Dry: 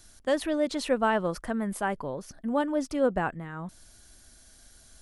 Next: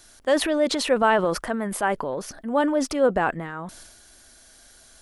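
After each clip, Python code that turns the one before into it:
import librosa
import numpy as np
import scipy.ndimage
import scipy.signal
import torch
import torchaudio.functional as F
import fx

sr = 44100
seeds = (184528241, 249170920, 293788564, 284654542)

y = fx.bass_treble(x, sr, bass_db=-10, treble_db=-3)
y = fx.transient(y, sr, attack_db=-1, sustain_db=7)
y = y * librosa.db_to_amplitude(6.5)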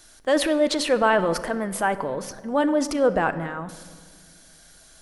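y = fx.room_shoebox(x, sr, seeds[0], volume_m3=2300.0, walls='mixed', distance_m=0.55)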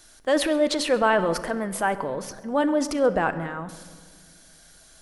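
y = x + 10.0 ** (-22.5 / 20.0) * np.pad(x, (int(133 * sr / 1000.0), 0))[:len(x)]
y = y * librosa.db_to_amplitude(-1.0)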